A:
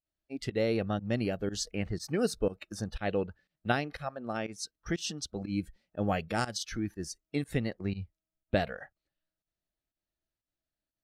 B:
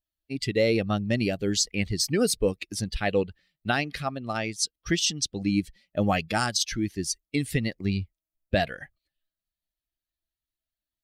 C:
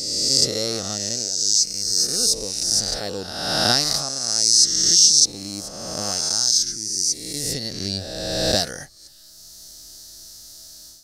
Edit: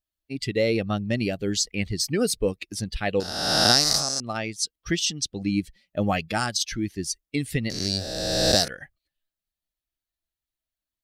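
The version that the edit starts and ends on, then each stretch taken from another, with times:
B
3.20–4.20 s: from C
7.70–8.68 s: from C
not used: A

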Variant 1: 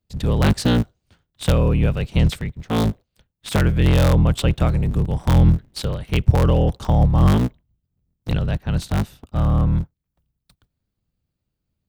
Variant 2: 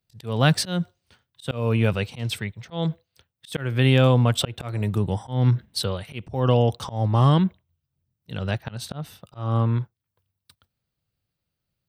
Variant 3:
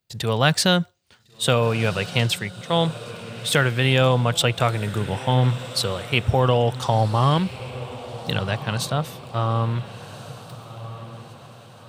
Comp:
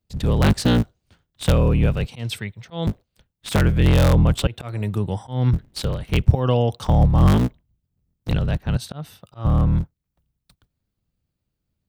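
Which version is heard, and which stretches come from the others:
1
2.08–2.87 s: from 2
4.47–5.53 s: from 2
6.35–6.85 s: from 2
8.77–9.45 s: from 2
not used: 3

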